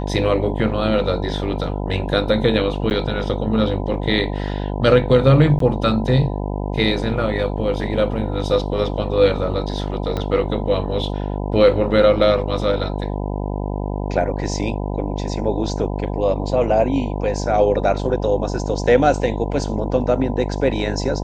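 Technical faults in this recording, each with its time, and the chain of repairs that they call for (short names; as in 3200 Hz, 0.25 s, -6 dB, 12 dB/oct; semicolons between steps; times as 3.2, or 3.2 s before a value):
buzz 50 Hz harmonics 20 -24 dBFS
2.9–2.91 gap 9.5 ms
5.59–5.6 gap 13 ms
10.17 pop -12 dBFS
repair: de-click; de-hum 50 Hz, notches 20; interpolate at 2.9, 9.5 ms; interpolate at 5.59, 13 ms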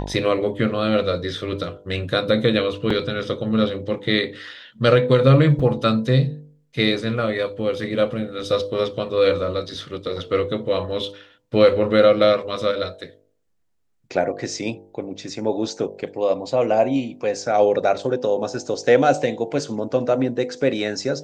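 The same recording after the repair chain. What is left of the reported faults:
10.17 pop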